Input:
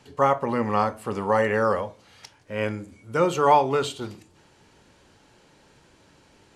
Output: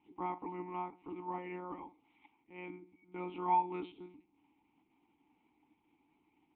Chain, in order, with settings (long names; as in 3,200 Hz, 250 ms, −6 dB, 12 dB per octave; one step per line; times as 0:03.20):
one-pitch LPC vocoder at 8 kHz 180 Hz
formant filter u
level −2.5 dB